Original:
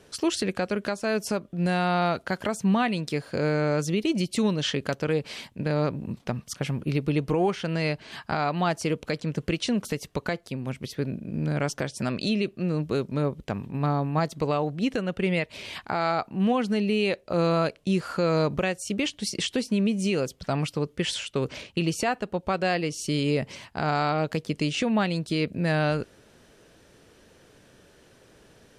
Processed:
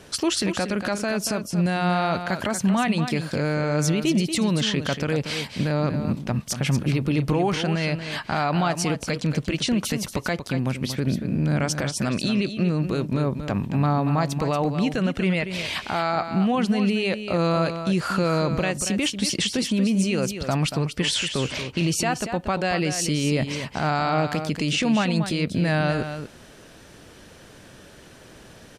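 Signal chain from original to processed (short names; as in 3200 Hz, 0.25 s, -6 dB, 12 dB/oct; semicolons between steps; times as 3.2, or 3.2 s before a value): bell 440 Hz -4.5 dB 0.56 oct; limiter -23.5 dBFS, peak gain reduction 8.5 dB; echo 0.234 s -9 dB; gain +9 dB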